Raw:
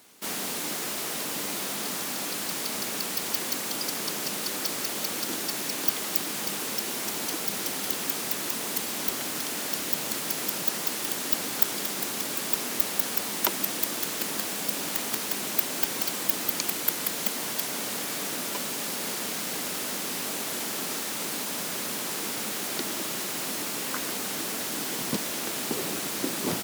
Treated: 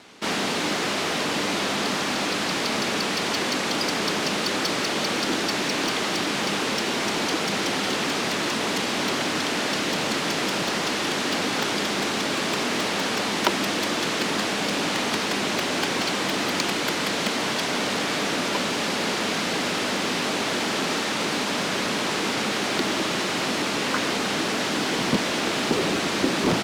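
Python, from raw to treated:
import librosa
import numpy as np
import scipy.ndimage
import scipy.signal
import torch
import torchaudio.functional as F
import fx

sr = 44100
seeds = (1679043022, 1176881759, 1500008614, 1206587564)

p1 = scipy.signal.sosfilt(scipy.signal.butter(2, 4200.0, 'lowpass', fs=sr, output='sos'), x)
p2 = 10.0 ** (-31.0 / 20.0) * (np.abs((p1 / 10.0 ** (-31.0 / 20.0) + 3.0) % 4.0 - 2.0) - 1.0)
p3 = p1 + F.gain(torch.from_numpy(p2), -6.5).numpy()
y = F.gain(torch.from_numpy(p3), 7.5).numpy()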